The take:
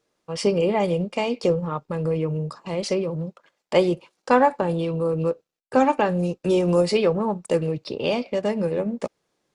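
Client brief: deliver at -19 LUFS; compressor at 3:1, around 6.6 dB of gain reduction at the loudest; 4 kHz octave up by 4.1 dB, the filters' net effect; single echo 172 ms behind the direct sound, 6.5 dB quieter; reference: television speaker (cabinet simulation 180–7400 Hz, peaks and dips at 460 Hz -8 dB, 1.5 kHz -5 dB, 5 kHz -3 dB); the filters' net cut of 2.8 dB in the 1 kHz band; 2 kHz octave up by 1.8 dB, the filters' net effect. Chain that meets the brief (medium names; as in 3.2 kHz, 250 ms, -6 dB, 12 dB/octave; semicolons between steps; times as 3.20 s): peaking EQ 1 kHz -3.5 dB; peaking EQ 2 kHz +3.5 dB; peaking EQ 4 kHz +6 dB; compression 3:1, threshold -21 dBFS; cabinet simulation 180–7400 Hz, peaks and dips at 460 Hz -8 dB, 1.5 kHz -5 dB, 5 kHz -3 dB; delay 172 ms -6.5 dB; trim +9.5 dB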